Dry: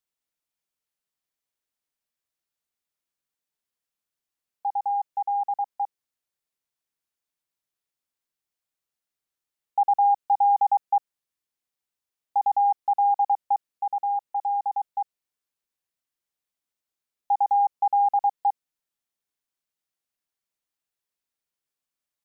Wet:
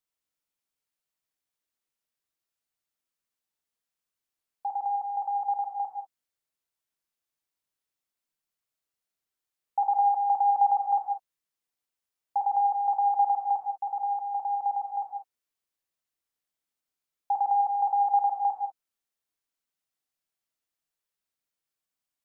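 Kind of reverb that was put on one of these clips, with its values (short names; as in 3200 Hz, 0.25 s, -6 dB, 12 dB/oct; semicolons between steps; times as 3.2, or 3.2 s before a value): non-linear reverb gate 0.22 s flat, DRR 3 dB; gain -2.5 dB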